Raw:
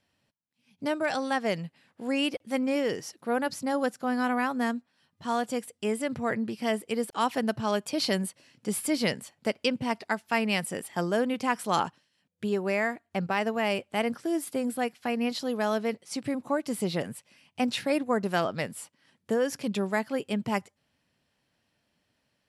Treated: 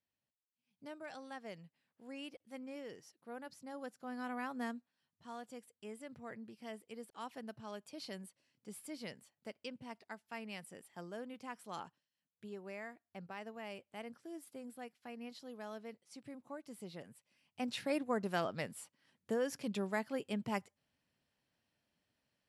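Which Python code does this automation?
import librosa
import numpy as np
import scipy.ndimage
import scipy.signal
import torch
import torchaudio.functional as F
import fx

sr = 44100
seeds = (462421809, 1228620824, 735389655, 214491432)

y = fx.gain(x, sr, db=fx.line((3.62, -20.0), (4.64, -12.0), (5.32, -19.5), (17.14, -19.5), (17.85, -9.0)))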